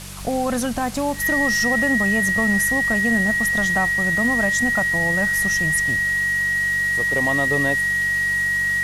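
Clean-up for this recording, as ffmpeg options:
-af "adeclick=t=4,bandreject=f=47.6:t=h:w=4,bandreject=f=95.2:t=h:w=4,bandreject=f=142.8:t=h:w=4,bandreject=f=190.4:t=h:w=4,bandreject=f=1900:w=30,afwtdn=0.016"

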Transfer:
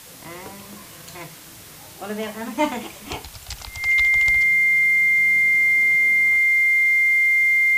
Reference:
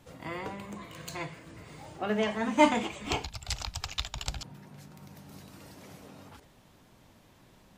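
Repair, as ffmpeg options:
-af "bandreject=f=2100:w=30,afwtdn=0.0079,asetnsamples=n=441:p=0,asendcmd='5.18 volume volume -3dB',volume=1"

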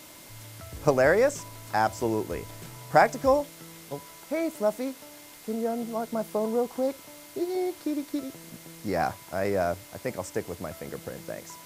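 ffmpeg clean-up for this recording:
-af "adeclick=t=4,bandreject=f=2100:w=30,afwtdn=0.004"

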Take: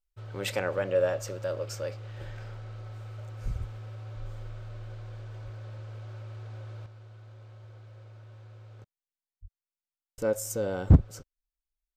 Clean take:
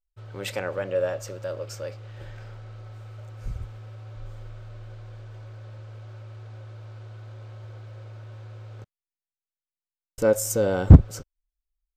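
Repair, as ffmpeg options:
-filter_complex "[0:a]asplit=3[s0][s1][s2];[s0]afade=t=out:st=5.44:d=0.02[s3];[s1]highpass=f=140:w=0.5412,highpass=f=140:w=1.3066,afade=t=in:st=5.44:d=0.02,afade=t=out:st=5.56:d=0.02[s4];[s2]afade=t=in:st=5.56:d=0.02[s5];[s3][s4][s5]amix=inputs=3:normalize=0,asplit=3[s6][s7][s8];[s6]afade=t=out:st=9.41:d=0.02[s9];[s7]highpass=f=140:w=0.5412,highpass=f=140:w=1.3066,afade=t=in:st=9.41:d=0.02,afade=t=out:st=9.53:d=0.02[s10];[s8]afade=t=in:st=9.53:d=0.02[s11];[s9][s10][s11]amix=inputs=3:normalize=0,asetnsamples=n=441:p=0,asendcmd='6.86 volume volume 7.5dB',volume=1"

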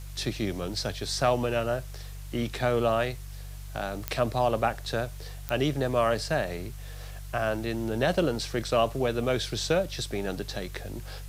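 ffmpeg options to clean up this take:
-af "adeclick=t=4,bandreject=f=48.4:t=h:w=4,bandreject=f=96.8:t=h:w=4,bandreject=f=145.2:t=h:w=4,afwtdn=0.0025"

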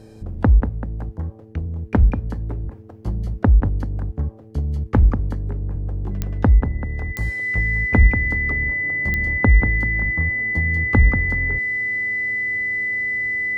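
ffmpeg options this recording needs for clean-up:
-af "adeclick=t=4,bandreject=f=109.5:t=h:w=4,bandreject=f=219:t=h:w=4,bandreject=f=328.5:t=h:w=4,bandreject=f=438:t=h:w=4,bandreject=f=2000:w=30"

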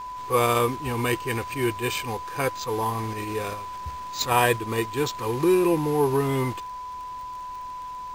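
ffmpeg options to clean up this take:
-af "adeclick=t=4,bandreject=f=1000:w=30"

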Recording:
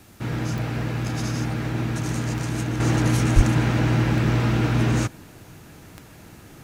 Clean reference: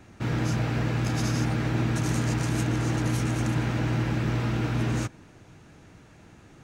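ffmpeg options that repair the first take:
-filter_complex "[0:a]adeclick=t=4,asplit=3[s0][s1][s2];[s0]afade=t=out:st=3.35:d=0.02[s3];[s1]highpass=f=140:w=0.5412,highpass=f=140:w=1.3066,afade=t=in:st=3.35:d=0.02,afade=t=out:st=3.47:d=0.02[s4];[s2]afade=t=in:st=3.47:d=0.02[s5];[s3][s4][s5]amix=inputs=3:normalize=0,agate=range=0.0891:threshold=0.0141,asetnsamples=n=441:p=0,asendcmd='2.8 volume volume -6dB',volume=1"

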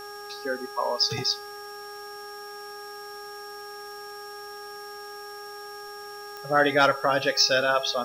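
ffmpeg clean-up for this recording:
-af "adeclick=t=4,bandreject=f=411:t=h:w=4,bandreject=f=822:t=h:w=4,bandreject=f=1233:t=h:w=4,bandreject=f=1644:t=h:w=4,bandreject=f=5500:w=30,afwtdn=0.0028"

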